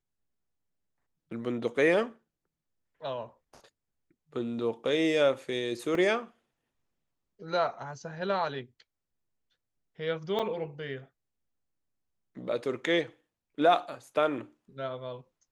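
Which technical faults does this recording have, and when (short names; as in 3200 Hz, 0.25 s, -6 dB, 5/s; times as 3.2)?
5.95 gap 2.3 ms
10.39–10.4 gap 5.8 ms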